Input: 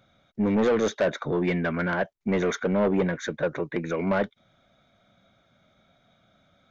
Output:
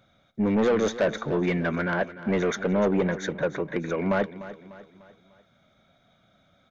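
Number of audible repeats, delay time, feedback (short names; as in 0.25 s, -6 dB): 3, 0.298 s, 46%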